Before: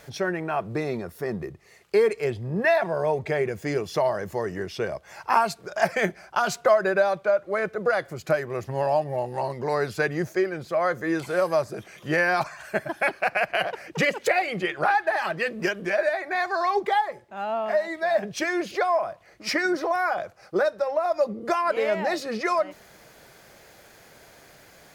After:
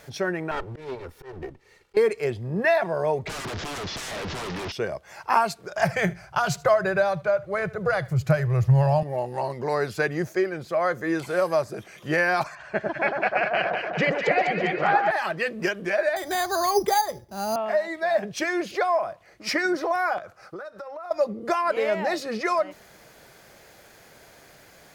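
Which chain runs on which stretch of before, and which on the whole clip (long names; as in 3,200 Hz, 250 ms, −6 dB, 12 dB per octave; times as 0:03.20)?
0:00.51–0:01.97: lower of the sound and its delayed copy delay 2.2 ms + high-shelf EQ 6,900 Hz −10.5 dB + volume swells 172 ms
0:03.27–0:04.72: linear delta modulator 32 kbit/s, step −25 dBFS + wrap-around overflow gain 26.5 dB + high-frequency loss of the air 53 metres
0:05.78–0:09.03: low shelf with overshoot 180 Hz +11 dB, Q 3 + single-tap delay 77 ms −21.5 dB
0:12.55–0:15.11: high-frequency loss of the air 150 metres + delay that swaps between a low-pass and a high-pass 100 ms, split 1,400 Hz, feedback 79%, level −3 dB
0:16.16–0:17.56: RIAA equalisation playback + sample-rate reduction 5,500 Hz
0:20.18–0:21.11: parametric band 1,300 Hz +9 dB 0.43 octaves + downward compressor 10 to 1, threshold −34 dBFS
whole clip: no processing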